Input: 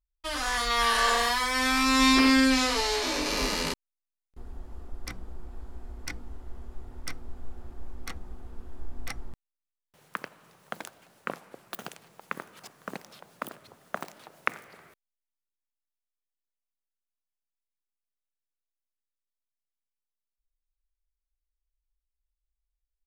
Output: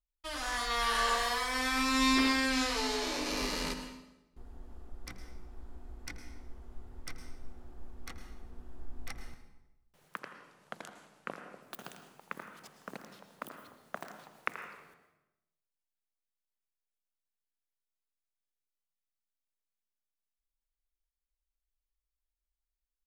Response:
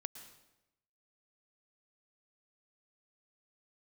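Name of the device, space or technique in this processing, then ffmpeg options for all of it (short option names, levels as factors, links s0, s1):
bathroom: -filter_complex "[1:a]atrim=start_sample=2205[s0];[0:a][s0]afir=irnorm=-1:irlink=0,asettb=1/sr,asplit=3[s1][s2][s3];[s1]atrim=end=10.194[s4];[s2]atrim=start=10.19:end=11.62,asetpts=PTS-STARTPTS,afade=t=in:d=0.004:c=qsin,afade=t=out:st=1.426:d=0.004:c=qsin,lowpass=10000[s5];[s3]atrim=start=11.616[s6];[s4][s5]acrossfade=d=0.004:c1=hsin:c2=qsin[s7];[s7][s6]acrossfade=d=0.004:c1=qsin:c2=hsin,asplit=2[s8][s9];[s9]adelay=82,lowpass=f=1600:p=1,volume=0.299,asplit=2[s10][s11];[s11]adelay=82,lowpass=f=1600:p=1,volume=0.48,asplit=2[s12][s13];[s13]adelay=82,lowpass=f=1600:p=1,volume=0.48,asplit=2[s14][s15];[s15]adelay=82,lowpass=f=1600:p=1,volume=0.48,asplit=2[s16][s17];[s17]adelay=82,lowpass=f=1600:p=1,volume=0.48[s18];[s8][s10][s12][s14][s16][s18]amix=inputs=6:normalize=0,volume=0.668"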